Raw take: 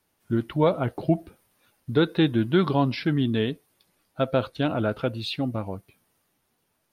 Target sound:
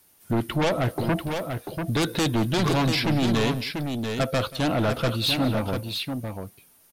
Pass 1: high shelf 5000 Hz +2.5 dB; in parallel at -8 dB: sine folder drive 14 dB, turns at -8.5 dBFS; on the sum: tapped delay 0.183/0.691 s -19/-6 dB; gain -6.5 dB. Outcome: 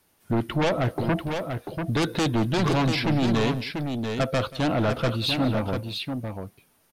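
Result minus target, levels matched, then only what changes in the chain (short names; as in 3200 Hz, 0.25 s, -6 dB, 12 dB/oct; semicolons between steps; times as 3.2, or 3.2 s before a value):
8000 Hz band -4.0 dB
change: high shelf 5000 Hz +13 dB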